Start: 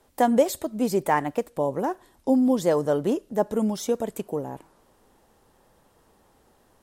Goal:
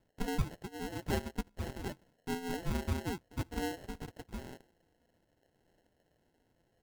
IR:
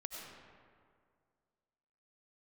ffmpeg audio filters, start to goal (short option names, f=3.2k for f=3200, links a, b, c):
-af "flanger=delay=0.1:depth=8.4:regen=-12:speed=0.35:shape=sinusoidal,aeval=exprs='val(0)*sin(2*PI*1700*n/s)':c=same,tiltshelf=f=650:g=6.5,acrusher=samples=37:mix=1:aa=0.000001,volume=-3.5dB"